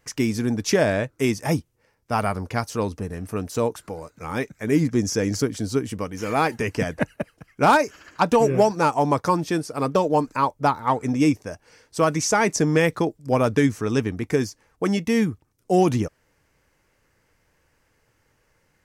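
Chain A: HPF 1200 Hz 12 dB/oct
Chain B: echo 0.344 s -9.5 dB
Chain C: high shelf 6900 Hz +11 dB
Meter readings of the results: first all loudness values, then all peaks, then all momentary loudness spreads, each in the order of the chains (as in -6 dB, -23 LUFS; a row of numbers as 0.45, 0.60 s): -30.5, -22.5, -22.5 LUFS; -8.5, -7.0, -6.5 dBFS; 14, 11, 11 LU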